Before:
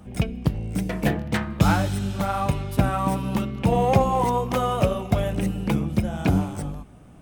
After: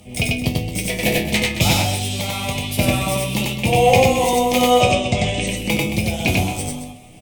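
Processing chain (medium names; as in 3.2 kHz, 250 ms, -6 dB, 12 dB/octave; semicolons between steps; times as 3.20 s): FFT filter 270 Hz 0 dB, 680 Hz +5 dB, 1.5 kHz -11 dB, 2.2 kHz +13 dB; 1.72–2.54 s: compression, threshold -21 dBFS, peak gain reduction 6.5 dB; 4.70–5.47 s: brick-wall FIR low-pass 9.1 kHz; chord resonator E2 major, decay 0.24 s; sine folder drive 7 dB, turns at -2.5 dBFS; on a send: loudspeakers at several distances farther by 32 m -1 dB, 76 m -11 dB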